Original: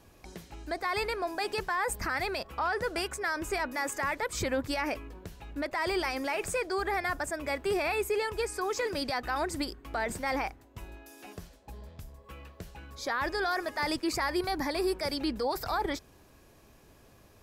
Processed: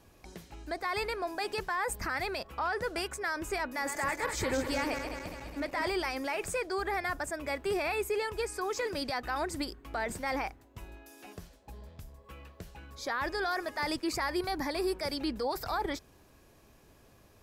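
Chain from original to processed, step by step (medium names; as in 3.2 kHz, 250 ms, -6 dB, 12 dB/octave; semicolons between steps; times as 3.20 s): 3.65–5.88 s: backward echo that repeats 103 ms, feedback 77%, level -7 dB; trim -2 dB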